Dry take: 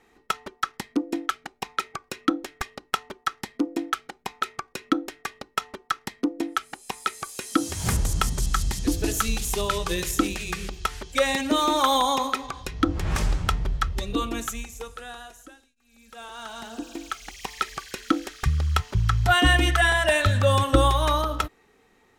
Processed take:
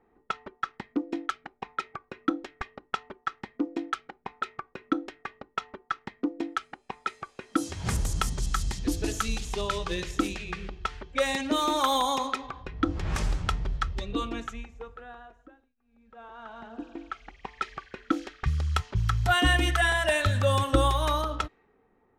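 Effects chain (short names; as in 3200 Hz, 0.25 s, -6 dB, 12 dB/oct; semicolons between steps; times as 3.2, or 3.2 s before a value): low-pass opened by the level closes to 1100 Hz, open at -18 dBFS; gain -4 dB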